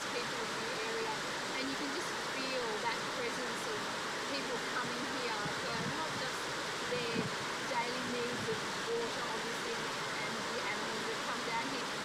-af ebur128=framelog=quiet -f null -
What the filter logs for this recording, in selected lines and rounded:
Integrated loudness:
  I:         -36.2 LUFS
  Threshold: -46.2 LUFS
Loudness range:
  LRA:         0.3 LU
  Threshold: -56.2 LUFS
  LRA low:   -36.4 LUFS
  LRA high:  -36.0 LUFS